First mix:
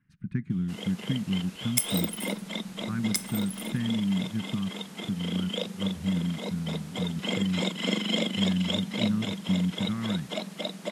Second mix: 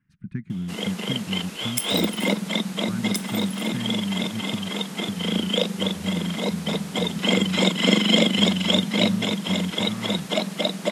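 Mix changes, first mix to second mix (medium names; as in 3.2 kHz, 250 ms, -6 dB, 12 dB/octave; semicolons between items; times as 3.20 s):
first sound +9.5 dB; reverb: off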